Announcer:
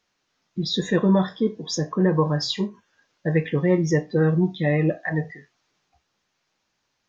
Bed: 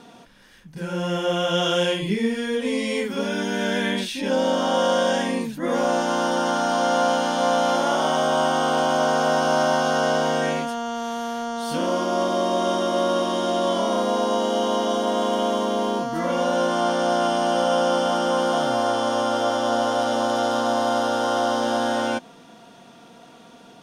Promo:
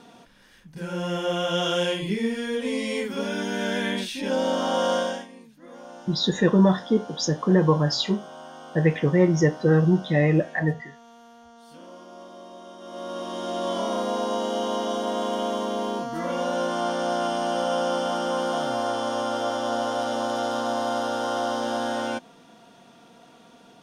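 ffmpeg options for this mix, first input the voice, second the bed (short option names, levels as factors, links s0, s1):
-filter_complex "[0:a]adelay=5500,volume=1.12[s0];[1:a]volume=5.01,afade=t=out:st=4.95:d=0.32:silence=0.11885,afade=t=in:st=12.78:d=1.03:silence=0.141254[s1];[s0][s1]amix=inputs=2:normalize=0"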